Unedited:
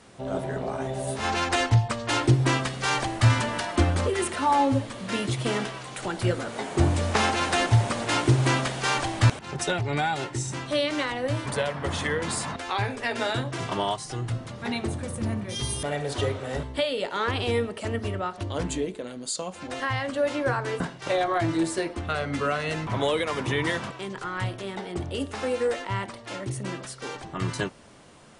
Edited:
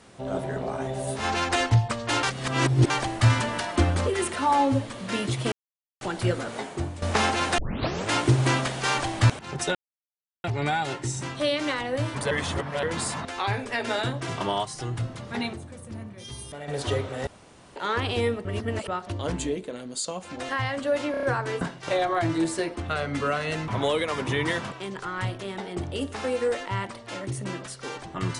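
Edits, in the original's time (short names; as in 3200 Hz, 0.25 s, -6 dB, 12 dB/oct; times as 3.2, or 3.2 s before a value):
2.23–2.9 reverse
5.52–6.01 mute
6.57–7.02 fade out quadratic, to -14 dB
7.58 tape start 0.53 s
9.75 insert silence 0.69 s
11.62–12.14 reverse
14.84–15.99 gain -9.5 dB
16.58–17.07 room tone
17.76–18.19 reverse
20.42 stutter 0.03 s, 5 plays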